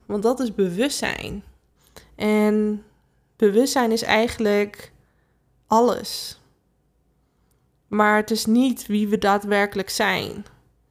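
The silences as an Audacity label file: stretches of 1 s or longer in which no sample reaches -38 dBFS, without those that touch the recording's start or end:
6.330000	7.910000	silence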